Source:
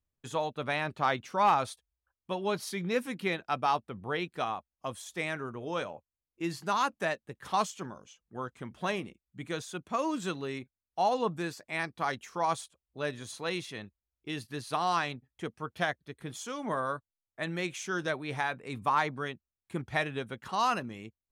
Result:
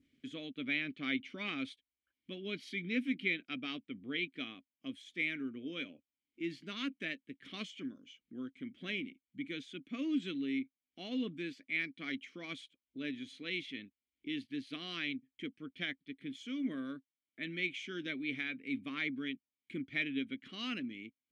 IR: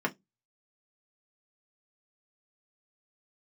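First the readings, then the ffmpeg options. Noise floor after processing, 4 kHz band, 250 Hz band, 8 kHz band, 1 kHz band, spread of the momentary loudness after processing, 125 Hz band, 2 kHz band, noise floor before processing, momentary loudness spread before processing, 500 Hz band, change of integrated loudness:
under -85 dBFS, -2.0 dB, 0.0 dB, under -15 dB, -25.0 dB, 11 LU, -11.0 dB, -3.0 dB, under -85 dBFS, 13 LU, -13.5 dB, -6.5 dB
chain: -filter_complex "[0:a]adynamicequalizer=threshold=0.00631:dfrequency=2900:dqfactor=1.1:tfrequency=2900:tqfactor=1.1:attack=5:release=100:ratio=0.375:range=2.5:mode=boostabove:tftype=bell,acompressor=mode=upward:threshold=0.00891:ratio=2.5,asplit=3[s0][s1][s2];[s0]bandpass=f=270:t=q:w=8,volume=1[s3];[s1]bandpass=f=2290:t=q:w=8,volume=0.501[s4];[s2]bandpass=f=3010:t=q:w=8,volume=0.355[s5];[s3][s4][s5]amix=inputs=3:normalize=0,volume=2.24"

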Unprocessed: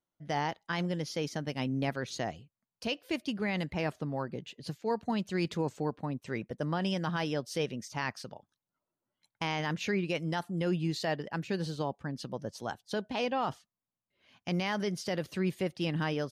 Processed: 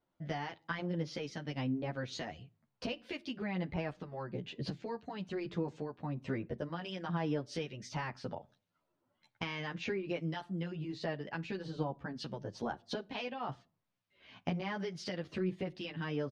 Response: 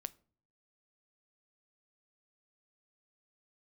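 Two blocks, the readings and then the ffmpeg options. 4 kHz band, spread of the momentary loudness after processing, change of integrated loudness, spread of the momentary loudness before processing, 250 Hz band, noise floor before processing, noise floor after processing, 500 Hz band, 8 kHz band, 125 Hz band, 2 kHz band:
-6.0 dB, 6 LU, -5.5 dB, 7 LU, -5.0 dB, under -85 dBFS, -83 dBFS, -5.0 dB, -9.0 dB, -4.5 dB, -5.5 dB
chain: -filter_complex "[0:a]lowpass=3900,acompressor=threshold=0.00794:ratio=10,acrossover=split=1500[s0][s1];[s0]aeval=exprs='val(0)*(1-0.5/2+0.5/2*cos(2*PI*1.1*n/s))':c=same[s2];[s1]aeval=exprs='val(0)*(1-0.5/2-0.5/2*cos(2*PI*1.1*n/s))':c=same[s3];[s2][s3]amix=inputs=2:normalize=0,asplit=2[s4][s5];[1:a]atrim=start_sample=2205,afade=t=out:st=0.36:d=0.01,atrim=end_sample=16317[s6];[s5][s6]afir=irnorm=-1:irlink=0,volume=1.88[s7];[s4][s7]amix=inputs=2:normalize=0,asplit=2[s8][s9];[s9]adelay=10.7,afreqshift=-2.6[s10];[s8][s10]amix=inputs=2:normalize=1,volume=1.88"

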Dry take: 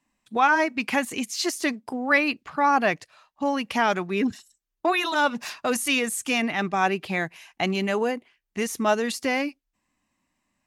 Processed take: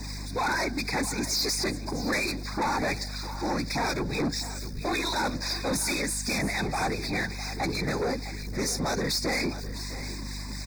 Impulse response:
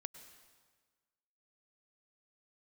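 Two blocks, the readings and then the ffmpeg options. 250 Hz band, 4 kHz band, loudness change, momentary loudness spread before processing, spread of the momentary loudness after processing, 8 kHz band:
-4.0 dB, +1.0 dB, -4.5 dB, 9 LU, 8 LU, +2.0 dB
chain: -filter_complex "[0:a]aeval=exprs='val(0)+0.5*0.0178*sgn(val(0))':c=same,bandreject=f=195.2:t=h:w=4,bandreject=f=390.4:t=h:w=4,bandreject=f=585.6:t=h:w=4,bandreject=f=780.8:t=h:w=4,bandreject=f=976:t=h:w=4,bandreject=f=1171.2:t=h:w=4,bandreject=f=1366.4:t=h:w=4,bandreject=f=1561.6:t=h:w=4,afftfilt=real='hypot(re,im)*cos(2*PI*random(0))':imag='hypot(re,im)*sin(2*PI*random(1))':win_size=512:overlap=0.75,equalizer=f=630:t=o:w=0.33:g=-5,equalizer=f=1250:t=o:w=0.33:g=-9,equalizer=f=5000:t=o:w=0.33:g=12,equalizer=f=12500:t=o:w=0.33:g=-9,aphaser=in_gain=1:out_gain=1:delay=3.8:decay=0.31:speed=1.9:type=triangular,acrossover=split=1400[s0][s1];[s0]aeval=exprs='val(0)*(1-0.5/2+0.5/2*cos(2*PI*4.2*n/s))':c=same[s2];[s1]aeval=exprs='val(0)*(1-0.5/2-0.5/2*cos(2*PI*4.2*n/s))':c=same[s3];[s2][s3]amix=inputs=2:normalize=0,aeval=exprs='val(0)+0.00708*(sin(2*PI*50*n/s)+sin(2*PI*2*50*n/s)/2+sin(2*PI*3*50*n/s)/3+sin(2*PI*4*50*n/s)/4+sin(2*PI*5*50*n/s)/5)':c=same,equalizer=f=4000:w=1.5:g=2,volume=37.6,asoftclip=hard,volume=0.0266,asuperstop=centerf=3000:order=12:qfactor=2.8,aecho=1:1:656:0.2,volume=2.24"

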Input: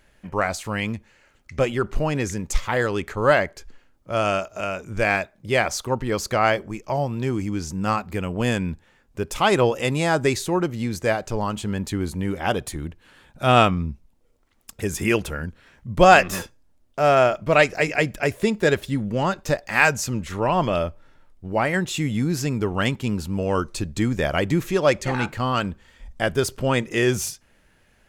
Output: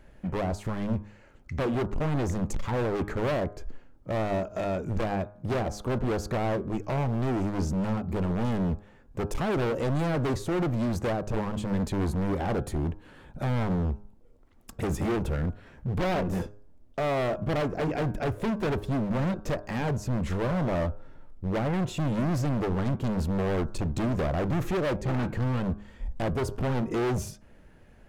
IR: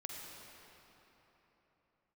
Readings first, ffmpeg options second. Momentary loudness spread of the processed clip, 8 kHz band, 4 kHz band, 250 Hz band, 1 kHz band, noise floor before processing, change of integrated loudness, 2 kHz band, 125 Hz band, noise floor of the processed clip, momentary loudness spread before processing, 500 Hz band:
7 LU, -13.5 dB, -13.0 dB, -3.0 dB, -11.0 dB, -60 dBFS, -7.0 dB, -14.5 dB, -1.5 dB, -54 dBFS, 12 LU, -8.0 dB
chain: -filter_complex "[0:a]acrossover=split=520[s0][s1];[s0]asoftclip=type=tanh:threshold=0.1[s2];[s1]acompressor=threshold=0.0251:ratio=6[s3];[s2][s3]amix=inputs=2:normalize=0,tiltshelf=f=1300:g=7.5,asoftclip=type=hard:threshold=0.0562,bandreject=f=103:t=h:w=4,bandreject=f=206:t=h:w=4,bandreject=f=309:t=h:w=4,bandreject=f=412:t=h:w=4,bandreject=f=515:t=h:w=4,bandreject=f=618:t=h:w=4,bandreject=f=721:t=h:w=4,bandreject=f=824:t=h:w=4,bandreject=f=927:t=h:w=4,bandreject=f=1030:t=h:w=4,bandreject=f=1133:t=h:w=4,bandreject=f=1236:t=h:w=4,bandreject=f=1339:t=h:w=4,bandreject=f=1442:t=h:w=4,bandreject=f=1545:t=h:w=4,bandreject=f=1648:t=h:w=4"

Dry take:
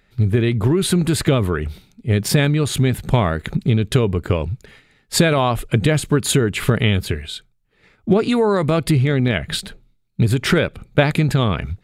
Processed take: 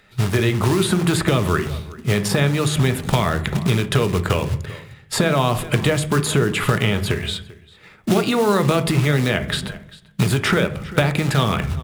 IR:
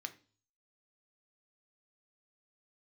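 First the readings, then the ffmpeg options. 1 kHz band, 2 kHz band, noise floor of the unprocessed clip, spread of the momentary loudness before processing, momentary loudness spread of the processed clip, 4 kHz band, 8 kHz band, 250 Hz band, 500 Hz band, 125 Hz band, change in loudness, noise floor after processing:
+1.5 dB, +1.0 dB, -61 dBFS, 10 LU, 9 LU, +0.5 dB, -1.0 dB, -1.5 dB, -1.0 dB, -1.5 dB, -1.0 dB, -48 dBFS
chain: -filter_complex "[0:a]asplit=2[s0][s1];[s1]adelay=390.7,volume=0.0631,highshelf=f=4000:g=-8.79[s2];[s0][s2]amix=inputs=2:normalize=0,acrusher=bits=5:mode=log:mix=0:aa=0.000001,acrossover=split=490|1600[s3][s4][s5];[s3]acompressor=threshold=0.0708:ratio=4[s6];[s4]acompressor=threshold=0.0282:ratio=4[s7];[s5]acompressor=threshold=0.0224:ratio=4[s8];[s6][s7][s8]amix=inputs=3:normalize=0,asplit=2[s9][s10];[1:a]atrim=start_sample=2205,asetrate=22932,aresample=44100[s11];[s10][s11]afir=irnorm=-1:irlink=0,volume=1.78[s12];[s9][s12]amix=inputs=2:normalize=0,volume=0.841"

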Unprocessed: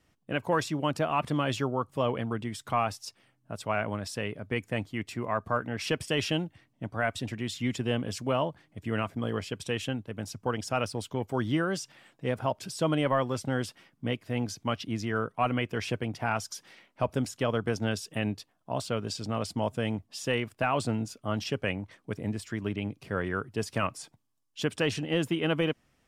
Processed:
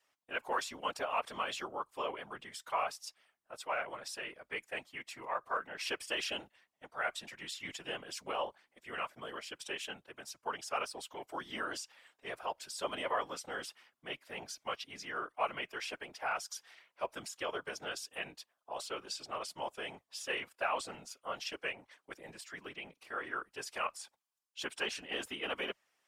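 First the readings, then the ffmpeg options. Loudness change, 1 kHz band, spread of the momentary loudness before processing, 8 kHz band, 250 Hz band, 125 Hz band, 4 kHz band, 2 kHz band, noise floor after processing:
-8.5 dB, -5.5 dB, 8 LU, -4.0 dB, -20.0 dB, -28.5 dB, -4.5 dB, -4.5 dB, -84 dBFS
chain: -af "highpass=740,aeval=exprs='0.15*(cos(1*acos(clip(val(0)/0.15,-1,1)))-cos(1*PI/2))+0.0015*(cos(2*acos(clip(val(0)/0.15,-1,1)))-cos(2*PI/2))':c=same,afreqshift=-29,afftfilt=real='hypot(re,im)*cos(2*PI*random(0))':imag='hypot(re,im)*sin(2*PI*random(1))':win_size=512:overlap=0.75,volume=1.26"

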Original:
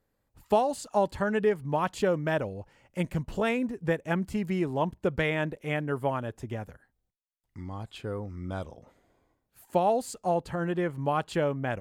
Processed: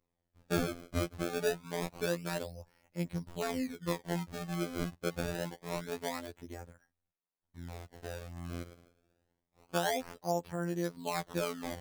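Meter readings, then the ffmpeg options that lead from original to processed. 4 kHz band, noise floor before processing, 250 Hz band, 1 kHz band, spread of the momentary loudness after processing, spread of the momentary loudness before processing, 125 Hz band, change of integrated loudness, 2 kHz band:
0.0 dB, -79 dBFS, -6.5 dB, -10.0 dB, 12 LU, 12 LU, -7.0 dB, -7.5 dB, -7.0 dB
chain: -af "acrusher=samples=27:mix=1:aa=0.000001:lfo=1:lforange=43.2:lforate=0.26,afftfilt=real='hypot(re,im)*cos(PI*b)':imag='0':win_size=2048:overlap=0.75,bandreject=f=2800:w=27,volume=0.596"

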